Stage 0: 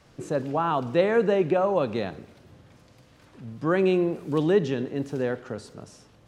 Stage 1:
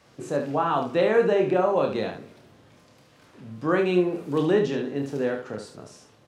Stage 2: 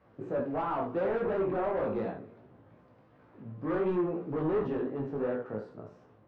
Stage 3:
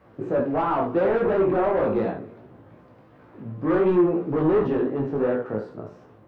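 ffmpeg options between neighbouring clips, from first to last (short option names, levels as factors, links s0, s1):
-filter_complex "[0:a]highpass=f=170:p=1,asplit=2[s0][s1];[s1]aecho=0:1:28|72:0.562|0.422[s2];[s0][s2]amix=inputs=2:normalize=0"
-af "volume=16.8,asoftclip=hard,volume=0.0596,lowpass=1300,flanger=delay=15.5:depth=3.6:speed=2.8"
-af "equalizer=f=340:w=7:g=3.5,volume=2.66"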